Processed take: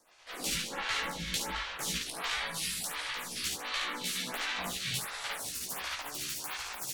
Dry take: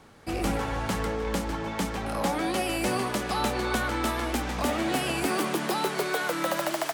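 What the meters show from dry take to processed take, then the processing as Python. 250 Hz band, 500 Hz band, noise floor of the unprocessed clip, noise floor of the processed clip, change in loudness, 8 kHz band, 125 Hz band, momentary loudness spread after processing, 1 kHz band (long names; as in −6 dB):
−17.5 dB, −17.5 dB, −34 dBFS, −43 dBFS, −6.0 dB, +1.0 dB, −13.5 dB, 4 LU, −11.0 dB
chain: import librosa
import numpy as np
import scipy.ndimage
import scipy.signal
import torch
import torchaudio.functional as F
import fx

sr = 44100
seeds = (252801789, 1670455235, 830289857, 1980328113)

p1 = fx.low_shelf(x, sr, hz=170.0, db=9.0)
p2 = fx.spec_gate(p1, sr, threshold_db=-10, keep='weak')
p3 = fx.curve_eq(p2, sr, hz=(120.0, 200.0, 400.0, 3700.0, 8900.0), db=(0, -14, -22, 2, -5))
p4 = fx.rotary(p3, sr, hz=8.0)
p5 = fx.notch(p4, sr, hz=5000.0, q=21.0)
p6 = fx.rider(p5, sr, range_db=3, speed_s=0.5)
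p7 = fx.doubler(p6, sr, ms=16.0, db=-4.5)
p8 = fx.fold_sine(p7, sr, drive_db=4, ceiling_db=-20.5)
p9 = p8 + fx.room_early_taps(p8, sr, ms=(54, 71), db=(-5.0, -3.5), dry=0)
p10 = fx.spec_gate(p9, sr, threshold_db=-10, keep='weak')
y = fx.stagger_phaser(p10, sr, hz=1.4)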